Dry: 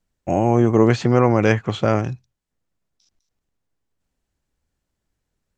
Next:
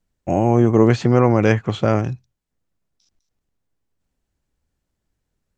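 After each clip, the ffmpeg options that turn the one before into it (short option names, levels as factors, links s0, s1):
-af "lowshelf=f=500:g=3,volume=0.891"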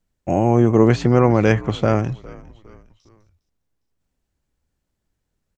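-filter_complex "[0:a]asplit=4[s0][s1][s2][s3];[s1]adelay=407,afreqshift=-71,volume=0.0891[s4];[s2]adelay=814,afreqshift=-142,volume=0.0403[s5];[s3]adelay=1221,afreqshift=-213,volume=0.018[s6];[s0][s4][s5][s6]amix=inputs=4:normalize=0"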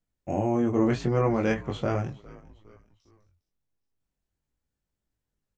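-af "flanger=delay=19:depth=3.4:speed=0.39,volume=0.501"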